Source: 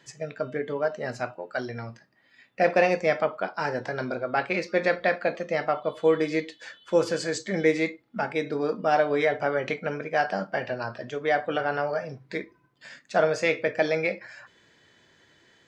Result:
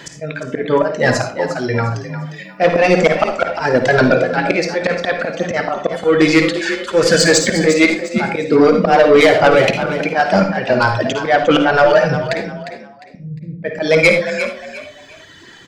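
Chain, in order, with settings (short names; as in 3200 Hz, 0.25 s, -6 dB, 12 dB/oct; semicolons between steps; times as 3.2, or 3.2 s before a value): reverb removal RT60 2 s; 12.41–13.63 inverse Chebyshev low-pass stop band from 840 Hz, stop band 80 dB; auto swell 0.23 s; soft clip -26 dBFS, distortion -11 dB; frequency-shifting echo 0.353 s, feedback 30%, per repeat +37 Hz, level -11 dB; reverb RT60 0.35 s, pre-delay 53 ms, DRR 6 dB; maximiser +23 dB; gain -1 dB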